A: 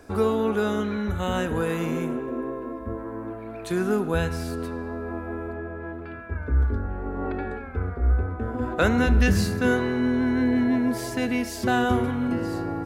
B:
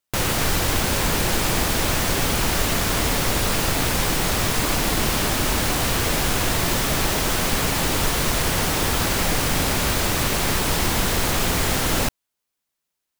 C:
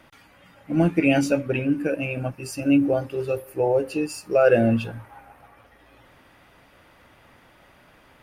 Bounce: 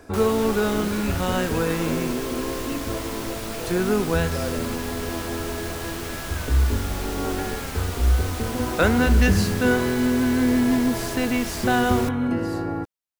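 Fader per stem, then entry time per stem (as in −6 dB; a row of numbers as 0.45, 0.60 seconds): +2.0, −12.0, −15.5 decibels; 0.00, 0.00, 0.00 seconds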